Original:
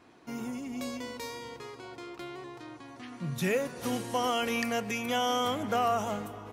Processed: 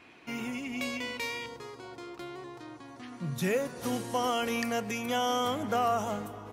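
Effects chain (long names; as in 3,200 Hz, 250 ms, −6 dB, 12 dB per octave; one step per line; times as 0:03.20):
parametric band 2,500 Hz +13 dB 0.89 octaves, from 0:01.46 −2.5 dB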